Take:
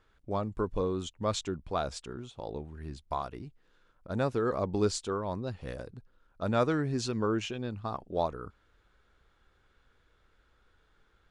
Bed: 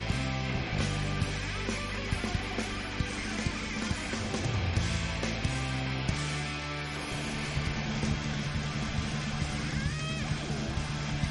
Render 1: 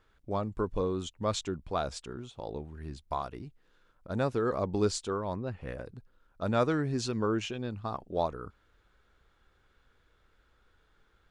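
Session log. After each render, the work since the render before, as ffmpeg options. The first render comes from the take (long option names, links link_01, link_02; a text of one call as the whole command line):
ffmpeg -i in.wav -filter_complex "[0:a]asettb=1/sr,asplit=3[link_01][link_02][link_03];[link_01]atrim=end=5.344[link_04];[link_02]atrim=start=5.34:end=5.86,asetpts=PTS-STARTPTS,afade=type=in:duration=0.004:curve=qsin,afade=type=out:start_time=0.516:duration=0.004:curve=qsin,highshelf=frequency=3100:width_type=q:width=1.5:gain=-7.5[link_05];[link_03]atrim=start=5.856[link_06];[link_04][link_05]acrossfade=duration=0.004:curve1=hsin:curve2=qsin[link_07];[link_07][link_06]acrossfade=duration=0.004:curve1=qsin:curve2=hsin" out.wav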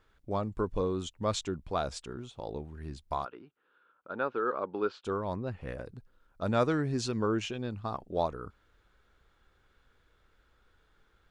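ffmpeg -i in.wav -filter_complex "[0:a]asplit=3[link_01][link_02][link_03];[link_01]afade=type=out:start_time=3.24:duration=0.02[link_04];[link_02]highpass=380,equalizer=frequency=680:width_type=q:width=4:gain=-6,equalizer=frequency=1400:width_type=q:width=4:gain=8,equalizer=frequency=2000:width_type=q:width=4:gain=-8,lowpass=frequency=3000:width=0.5412,lowpass=frequency=3000:width=1.3066,afade=type=in:start_time=3.24:duration=0.02,afade=type=out:start_time=5.04:duration=0.02[link_05];[link_03]afade=type=in:start_time=5.04:duration=0.02[link_06];[link_04][link_05][link_06]amix=inputs=3:normalize=0" out.wav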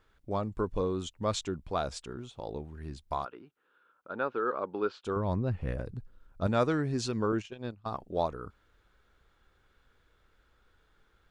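ffmpeg -i in.wav -filter_complex "[0:a]asettb=1/sr,asplit=3[link_01][link_02][link_03];[link_01]atrim=end=5.164[link_04];[link_02]atrim=start=5.16:end=6.47,asetpts=PTS-STARTPTS,afade=type=in:duration=0.004:curve=qsin,afade=type=out:start_time=1.306:duration=0.004:curve=qsin,lowshelf=frequency=210:gain=10.5[link_05];[link_03]atrim=start=6.466[link_06];[link_04][link_05]acrossfade=duration=0.004:curve1=hsin:curve2=qsin[link_07];[link_07][link_06]acrossfade=duration=0.004:curve1=qsin:curve2=hsin,asettb=1/sr,asplit=3[link_08][link_09][link_10];[link_08]atrim=end=7.324[link_11];[link_09]atrim=start=7.32:end=7.91,asetpts=PTS-STARTPTS,afade=type=in:duration=0.004:curve=qsin,afade=type=out:start_time=0.586:duration=0.004:curve=qsin,agate=range=-16dB:threshold=-36dB:ratio=16:release=100:detection=peak[link_12];[link_10]atrim=start=7.906[link_13];[link_11][link_12]acrossfade=duration=0.004:curve1=hsin:curve2=qsin[link_14];[link_14][link_13]acrossfade=duration=0.004:curve1=qsin:curve2=hsin" out.wav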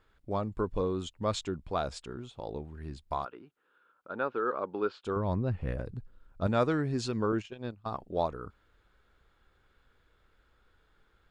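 ffmpeg -i in.wav -af "highshelf=frequency=7900:gain=-5.5,bandreject=frequency=5900:width=13" out.wav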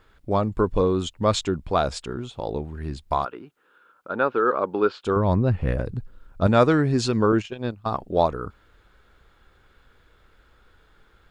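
ffmpeg -i in.wav -af "volume=10dB" out.wav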